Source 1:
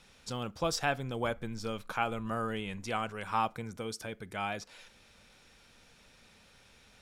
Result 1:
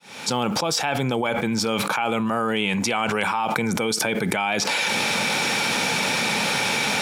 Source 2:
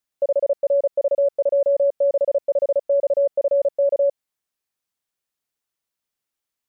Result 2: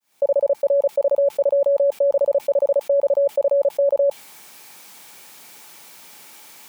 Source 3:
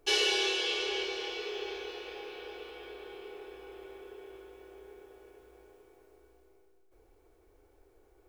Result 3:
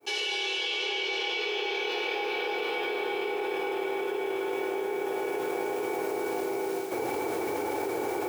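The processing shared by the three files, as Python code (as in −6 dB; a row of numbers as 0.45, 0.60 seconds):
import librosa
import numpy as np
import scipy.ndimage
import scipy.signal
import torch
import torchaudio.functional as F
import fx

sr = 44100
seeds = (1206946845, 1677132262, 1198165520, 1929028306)

y = fx.fade_in_head(x, sr, length_s=1.22)
y = scipy.signal.sosfilt(scipy.signal.butter(4, 140.0, 'highpass', fs=sr, output='sos'), y)
y = fx.small_body(y, sr, hz=(860.0, 2300.0), ring_ms=30, db=9)
y = fx.dynamic_eq(y, sr, hz=3000.0, q=2.1, threshold_db=-47.0, ratio=4.0, max_db=5)
y = fx.env_flatten(y, sr, amount_pct=100)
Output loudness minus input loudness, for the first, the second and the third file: +13.5, +1.5, +3.0 LU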